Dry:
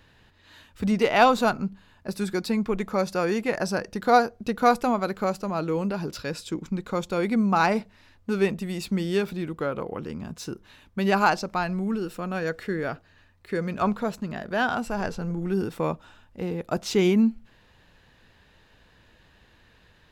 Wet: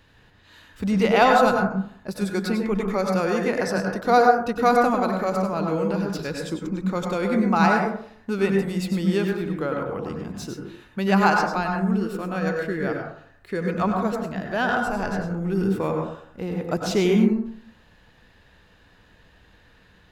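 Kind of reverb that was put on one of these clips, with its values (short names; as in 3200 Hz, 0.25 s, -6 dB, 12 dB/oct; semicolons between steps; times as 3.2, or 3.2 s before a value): plate-style reverb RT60 0.59 s, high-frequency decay 0.3×, pre-delay 85 ms, DRR 1.5 dB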